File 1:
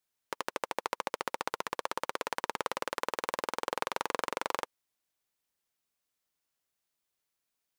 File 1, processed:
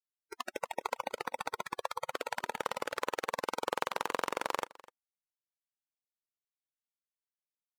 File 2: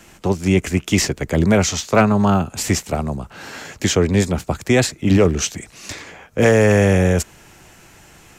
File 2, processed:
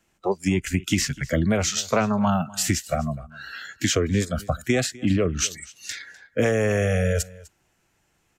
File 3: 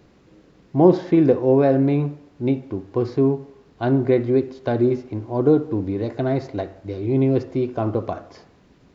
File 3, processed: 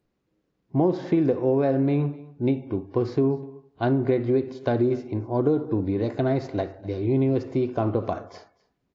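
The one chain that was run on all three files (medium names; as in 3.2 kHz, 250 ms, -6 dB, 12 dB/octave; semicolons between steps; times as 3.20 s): spectral noise reduction 22 dB; compression 5:1, threshold -18 dBFS; delay 251 ms -21.5 dB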